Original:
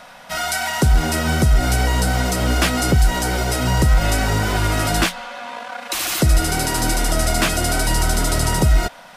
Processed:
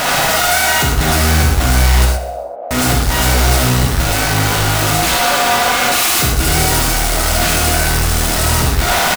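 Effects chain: infinite clipping; 2.05–2.71 Butterworth band-pass 610 Hz, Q 2.9; on a send: feedback echo 64 ms, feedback 59%, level -13 dB; on the sum: non-linear reverb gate 0.14 s flat, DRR -1 dB

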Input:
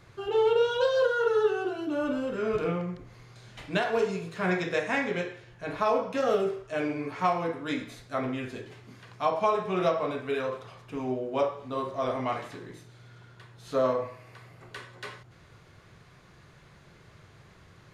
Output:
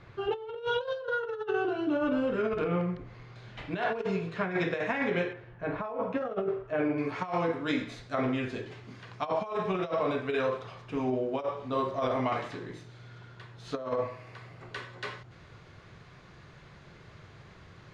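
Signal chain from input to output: LPF 3400 Hz 12 dB/oct, from 5.33 s 1800 Hz, from 6.98 s 5600 Hz; negative-ratio compressor -29 dBFS, ratio -0.5

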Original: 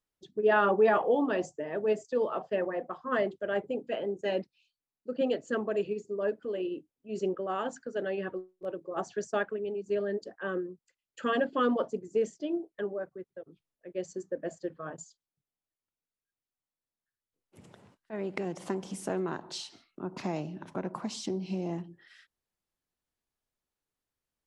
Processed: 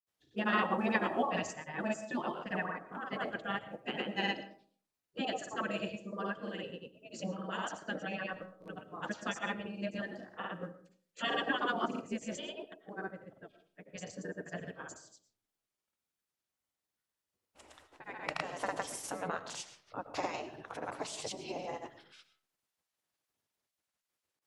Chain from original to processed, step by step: grains 0.1 s, grains 20/s, pitch spread up and down by 0 st; de-hum 63.32 Hz, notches 2; spectral gate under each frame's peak -10 dB weak; on a send: reverb RT60 0.45 s, pre-delay 70 ms, DRR 13 dB; on the sum: gain +5.5 dB

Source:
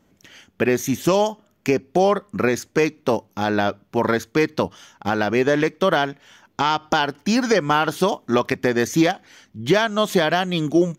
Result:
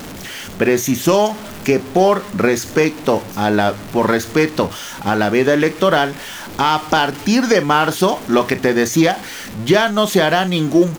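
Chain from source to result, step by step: zero-crossing step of -29.5 dBFS; notches 60/120 Hz; doubler 38 ms -13 dB; gain +3.5 dB

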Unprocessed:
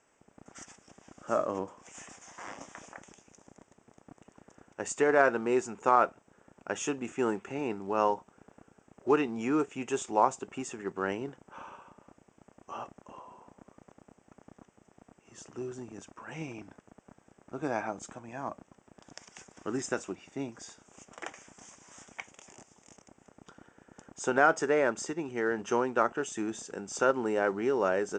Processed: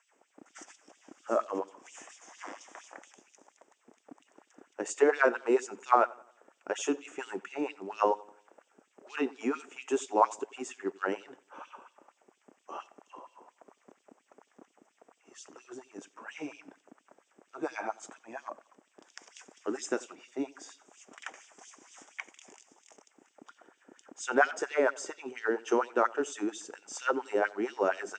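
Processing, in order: LFO high-pass sine 4.3 Hz 270–3700 Hz; analogue delay 89 ms, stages 4096, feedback 42%, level -22.5 dB; gain -2.5 dB

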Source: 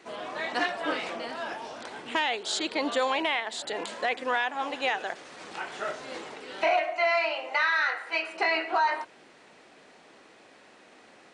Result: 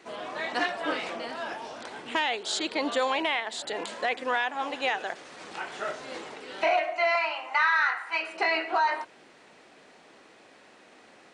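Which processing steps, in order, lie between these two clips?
7.15–8.21 graphic EQ 125/500/1000/4000 Hz -11/-12/+8/-3 dB

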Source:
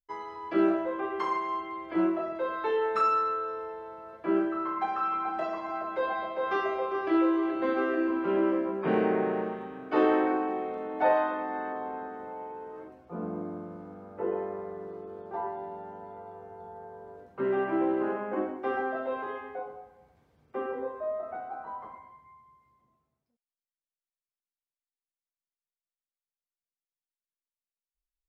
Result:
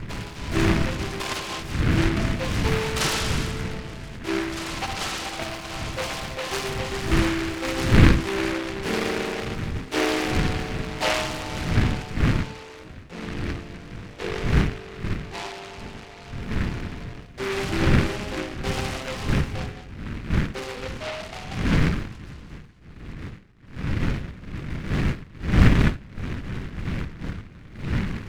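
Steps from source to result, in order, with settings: wind noise 170 Hz -26 dBFS; noise-modulated delay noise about 1600 Hz, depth 0.22 ms

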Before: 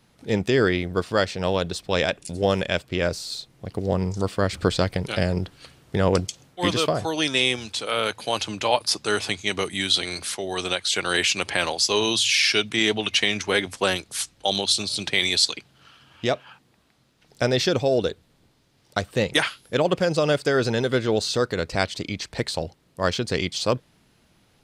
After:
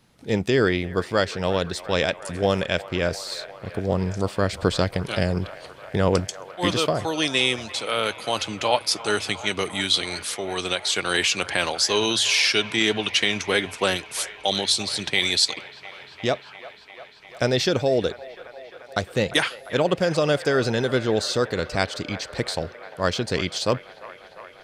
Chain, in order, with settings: band-limited delay 0.349 s, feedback 81%, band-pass 1200 Hz, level -14.5 dB

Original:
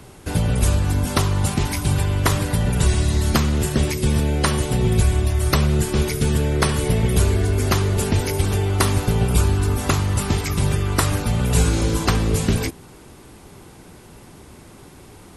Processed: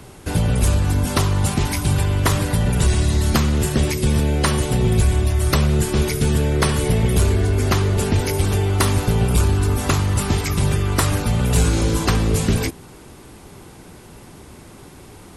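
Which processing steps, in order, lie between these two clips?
7.32–8.27 high shelf 7800 Hz -5 dB; soft clip -9 dBFS, distortion -22 dB; gain +2 dB

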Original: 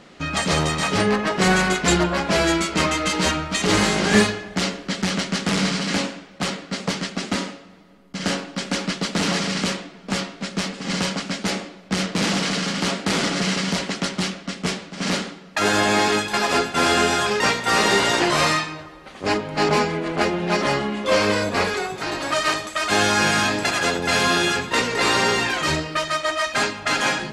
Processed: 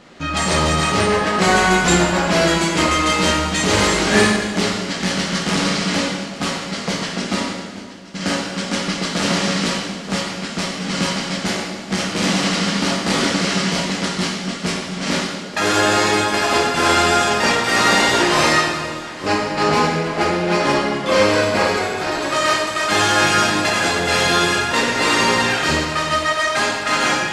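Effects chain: echo with dull and thin repeats by turns 0.437 s, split 800 Hz, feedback 54%, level -12 dB; plate-style reverb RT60 1.4 s, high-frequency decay 0.9×, DRR -1.5 dB

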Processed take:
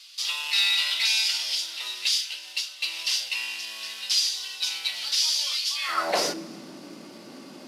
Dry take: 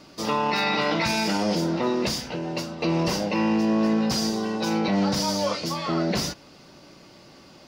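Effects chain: CVSD 64 kbps; Schroeder reverb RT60 2 s, combs from 27 ms, DRR 17 dB; high-pass sweep 3300 Hz -> 240 Hz, 5.74–6.42; gain +2.5 dB

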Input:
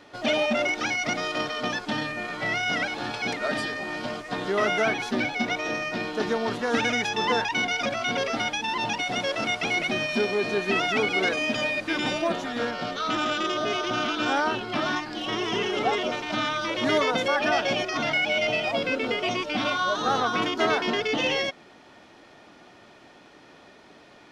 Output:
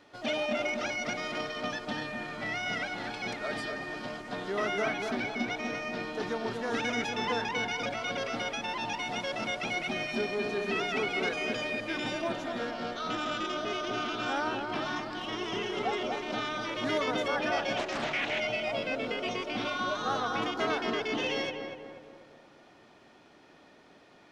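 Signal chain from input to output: on a send: darkening echo 0.241 s, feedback 51%, low-pass 1600 Hz, level -4.5 dB; 17.77–18.4 on the sum: Doppler distortion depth 0.41 ms; gain -7.5 dB

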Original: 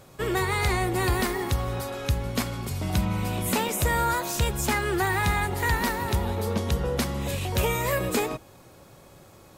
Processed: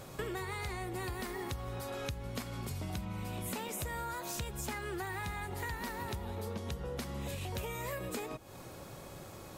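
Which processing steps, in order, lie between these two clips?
compressor 10:1, threshold -39 dBFS, peak gain reduction 19.5 dB; gain +2.5 dB

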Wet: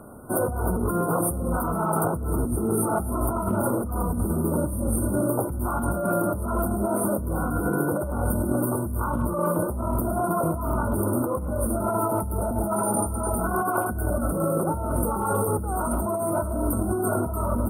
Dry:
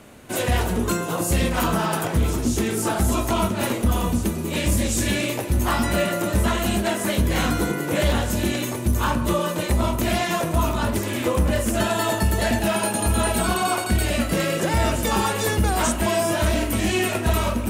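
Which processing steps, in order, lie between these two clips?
brick-wall FIR band-stop 1500–8500 Hz; speakerphone echo 0.1 s, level -23 dB; negative-ratio compressor -25 dBFS, ratio -1

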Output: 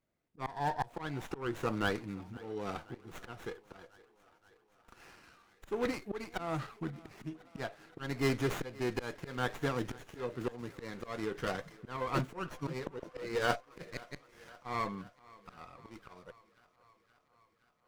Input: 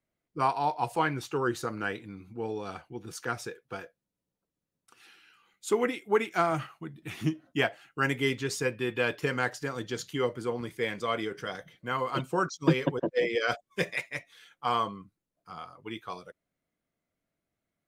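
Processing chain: auto swell 0.378 s; in parallel at -12 dB: wrapped overs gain 27 dB; on the sum: thinning echo 0.522 s, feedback 72%, high-pass 230 Hz, level -21.5 dB; running maximum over 9 samples

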